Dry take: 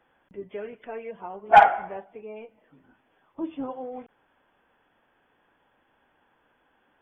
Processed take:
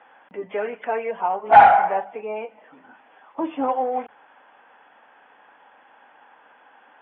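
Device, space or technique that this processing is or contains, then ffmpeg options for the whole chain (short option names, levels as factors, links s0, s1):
overdrive pedal into a guitar cabinet: -filter_complex "[0:a]bandreject=f=50:t=h:w=6,bandreject=f=100:t=h:w=6,bandreject=f=150:t=h:w=6,bandreject=f=200:t=h:w=6,asplit=2[s0][s1];[s1]highpass=f=720:p=1,volume=15.8,asoftclip=type=tanh:threshold=0.562[s2];[s0][s2]amix=inputs=2:normalize=0,lowpass=f=2700:p=1,volume=0.501,highpass=110,equalizer=f=140:t=q:w=4:g=-7,equalizer=f=360:t=q:w=4:g=-6,equalizer=f=820:t=q:w=4:g=5,lowpass=f=3400:w=0.5412,lowpass=f=3400:w=1.3066,acrossover=split=2800[s3][s4];[s4]acompressor=threshold=0.00316:ratio=4:attack=1:release=60[s5];[s3][s5]amix=inputs=2:normalize=0,volume=0.794"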